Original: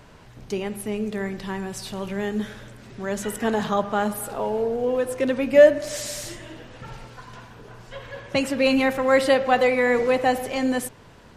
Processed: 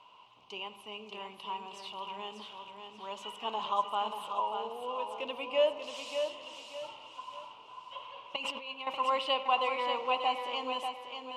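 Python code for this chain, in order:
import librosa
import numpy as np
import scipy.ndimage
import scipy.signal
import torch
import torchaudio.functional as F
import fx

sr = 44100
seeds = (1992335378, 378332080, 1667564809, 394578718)

y = fx.over_compress(x, sr, threshold_db=-29.0, ratio=-1.0, at=(8.36, 8.87))
y = fx.double_bandpass(y, sr, hz=1700.0, octaves=1.5)
y = fx.echo_feedback(y, sr, ms=589, feedback_pct=33, wet_db=-6.5)
y = F.gain(torch.from_numpy(y), 2.5).numpy()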